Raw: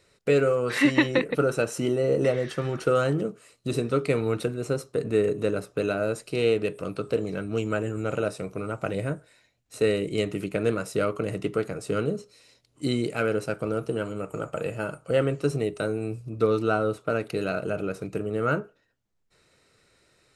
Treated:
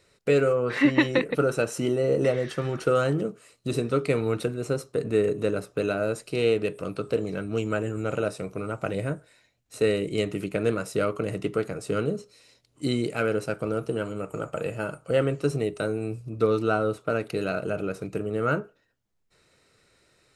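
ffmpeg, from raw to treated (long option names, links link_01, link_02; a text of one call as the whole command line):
ffmpeg -i in.wav -filter_complex "[0:a]asplit=3[link_01][link_02][link_03];[link_01]afade=type=out:start_time=0.52:duration=0.02[link_04];[link_02]aemphasis=mode=reproduction:type=75fm,afade=type=in:start_time=0.52:duration=0.02,afade=type=out:start_time=0.98:duration=0.02[link_05];[link_03]afade=type=in:start_time=0.98:duration=0.02[link_06];[link_04][link_05][link_06]amix=inputs=3:normalize=0" out.wav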